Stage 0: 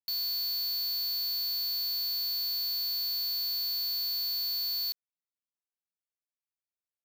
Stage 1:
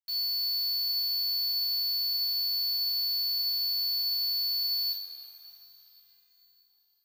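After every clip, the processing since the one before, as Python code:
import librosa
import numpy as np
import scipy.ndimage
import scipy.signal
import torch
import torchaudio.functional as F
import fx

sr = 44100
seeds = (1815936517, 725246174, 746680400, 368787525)

y = fx.low_shelf(x, sr, hz=340.0, db=-10.5)
y = fx.echo_tape(y, sr, ms=317, feedback_pct=64, wet_db=-7.5, lp_hz=3500.0, drive_db=34.0, wow_cents=37)
y = fx.rev_double_slope(y, sr, seeds[0], early_s=0.46, late_s=4.9, knee_db=-18, drr_db=-4.0)
y = F.gain(torch.from_numpy(y), -7.5).numpy()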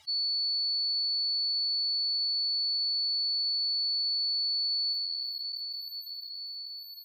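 y = fx.spec_expand(x, sr, power=3.5)
y = fx.air_absorb(y, sr, metres=81.0)
y = fx.env_flatten(y, sr, amount_pct=70)
y = F.gain(torch.from_numpy(y), 2.5).numpy()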